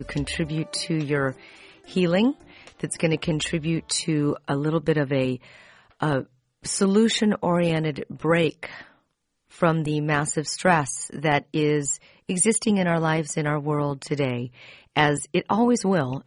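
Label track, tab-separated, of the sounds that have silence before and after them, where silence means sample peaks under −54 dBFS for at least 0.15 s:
6.630000	9.000000	sound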